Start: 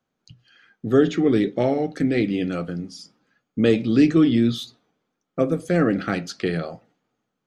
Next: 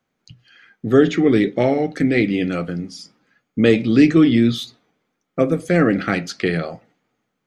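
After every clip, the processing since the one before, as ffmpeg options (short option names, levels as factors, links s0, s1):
-af "equalizer=f=2100:t=o:w=0.48:g=6,volume=1.5"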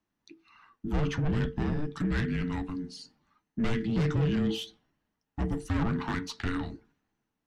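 -af "aeval=exprs='(tanh(6.31*val(0)+0.35)-tanh(0.35))/6.31':c=same,afreqshift=-450,volume=0.422"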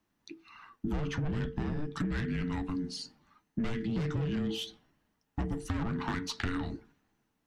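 -af "acompressor=threshold=0.0178:ratio=6,volume=1.78"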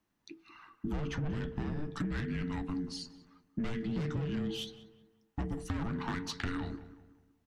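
-filter_complex "[0:a]asplit=2[s0][s1];[s1]adelay=187,lowpass=f=1900:p=1,volume=0.2,asplit=2[s2][s3];[s3]adelay=187,lowpass=f=1900:p=1,volume=0.42,asplit=2[s4][s5];[s5]adelay=187,lowpass=f=1900:p=1,volume=0.42,asplit=2[s6][s7];[s7]adelay=187,lowpass=f=1900:p=1,volume=0.42[s8];[s0][s2][s4][s6][s8]amix=inputs=5:normalize=0,volume=0.75"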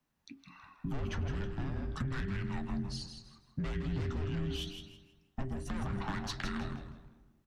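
-filter_complex "[0:a]afreqshift=-54,asplit=5[s0][s1][s2][s3][s4];[s1]adelay=161,afreqshift=-92,volume=0.422[s5];[s2]adelay=322,afreqshift=-184,volume=0.126[s6];[s3]adelay=483,afreqshift=-276,volume=0.038[s7];[s4]adelay=644,afreqshift=-368,volume=0.0114[s8];[s0][s5][s6][s7][s8]amix=inputs=5:normalize=0,volume=0.891"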